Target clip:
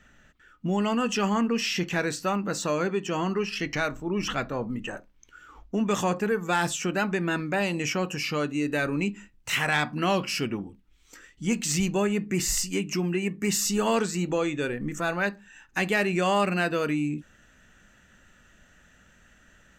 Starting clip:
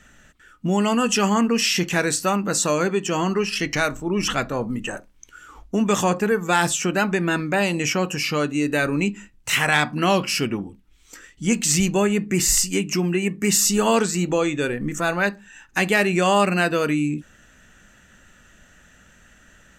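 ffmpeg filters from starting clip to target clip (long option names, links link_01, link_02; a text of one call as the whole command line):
ffmpeg -i in.wav -af "asoftclip=type=tanh:threshold=-6.5dB,asetnsamples=nb_out_samples=441:pad=0,asendcmd='5.91 equalizer g -5',equalizer=frequency=9800:width=0.93:gain=-12,volume=-5dB" out.wav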